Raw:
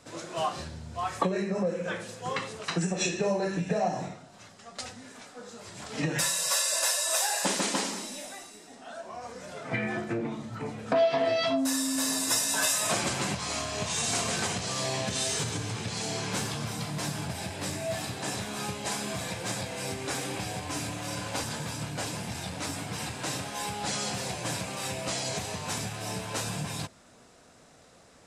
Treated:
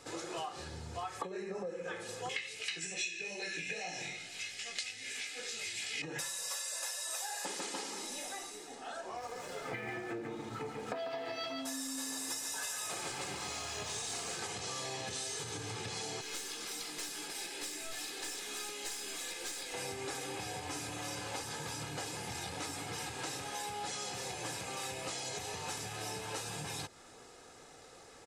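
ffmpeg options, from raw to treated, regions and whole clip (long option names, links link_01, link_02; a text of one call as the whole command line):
ffmpeg -i in.wav -filter_complex "[0:a]asettb=1/sr,asplit=3[link_01][link_02][link_03];[link_01]atrim=end=2.294[link_04];[link_02]atrim=start=2.29:end=6.02,asetpts=PTS-STARTPTS,afade=type=in:duration=0.004:curve=qsin,afade=type=out:start_time=3.726:duration=0.004:curve=qsin,highshelf=frequency=1600:width_type=q:width=3:gain=12.5,flanger=delay=17:depth=3.7:speed=2.5[link_05];[link_03]atrim=start=6.016[link_06];[link_04][link_05]acrossfade=duration=0.004:curve1=hsin:curve2=qsin[link_07];[link_07][link_06]acrossfade=duration=0.004:curve1=qsin:curve2=hsin,asettb=1/sr,asplit=3[link_08][link_09][link_10];[link_08]atrim=end=9.174[link_11];[link_09]atrim=start=9.17:end=14.37,asetpts=PTS-STARTPTS,afade=type=in:duration=0.004:curve=qsin,afade=type=out:start_time=5.196:duration=0.004:curve=qsin,aeval=exprs='sgn(val(0))*max(abs(val(0))-0.00282,0)':channel_layout=same,aecho=1:1:143:0.562,atrim=end_sample=229320[link_12];[link_10]atrim=start=14.366[link_13];[link_11][link_12]acrossfade=duration=0.004:curve1=hsin:curve2=qsin[link_14];[link_14][link_13]acrossfade=duration=0.004:curve1=qsin:curve2=hsin,asettb=1/sr,asplit=3[link_15][link_16][link_17];[link_15]atrim=end=16.214[link_18];[link_16]atrim=start=16.21:end=19.74,asetpts=PTS-STARTPTS,afade=type=in:duration=0.004:curve=qsin,afade=type=out:start_time=3.526:duration=0.004:curve=qsin,highpass=frequency=280:width=0.5412,highpass=frequency=280:width=1.3066,aeval=exprs='clip(val(0),-1,0.0178)':channel_layout=same,equalizer=frequency=740:width=0.67:gain=-11.5[link_19];[link_17]atrim=start=19.736[link_20];[link_18][link_19]acrossfade=duration=0.004:curve1=hsin:curve2=qsin[link_21];[link_21][link_20]acrossfade=duration=0.004:curve1=qsin:curve2=hsin,equalizer=frequency=65:width_type=o:width=2.5:gain=-6.5,aecho=1:1:2.4:0.51,acompressor=threshold=-39dB:ratio=6,volume=1dB" out.wav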